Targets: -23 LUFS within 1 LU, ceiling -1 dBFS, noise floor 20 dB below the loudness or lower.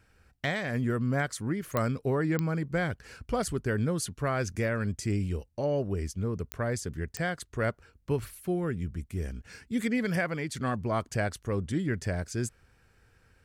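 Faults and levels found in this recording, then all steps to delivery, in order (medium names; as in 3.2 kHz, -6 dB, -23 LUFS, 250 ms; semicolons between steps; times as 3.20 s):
clicks found 4; loudness -31.5 LUFS; peak level -12.0 dBFS; loudness target -23.0 LUFS
-> de-click; trim +8.5 dB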